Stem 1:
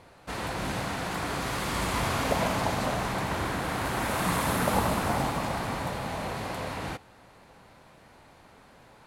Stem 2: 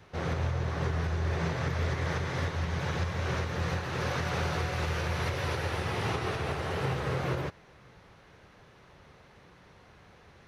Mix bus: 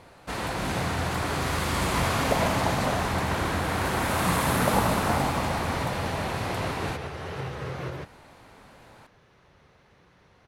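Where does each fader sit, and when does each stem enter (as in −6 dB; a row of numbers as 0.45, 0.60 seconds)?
+2.5, −3.0 decibels; 0.00, 0.55 seconds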